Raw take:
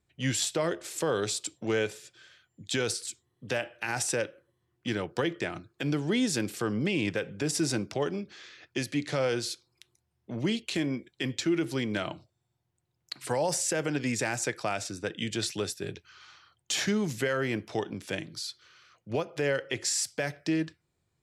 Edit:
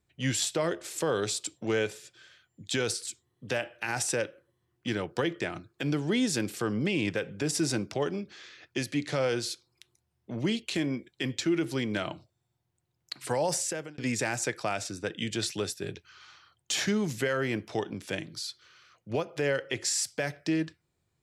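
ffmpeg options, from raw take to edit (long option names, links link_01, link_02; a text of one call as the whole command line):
ffmpeg -i in.wav -filter_complex "[0:a]asplit=2[link_01][link_02];[link_01]atrim=end=13.98,asetpts=PTS-STARTPTS,afade=type=out:start_time=13.56:duration=0.42[link_03];[link_02]atrim=start=13.98,asetpts=PTS-STARTPTS,afade=type=in:duration=0.004:curve=hsin[link_04];[link_03][link_04]concat=n=2:v=0:a=1" out.wav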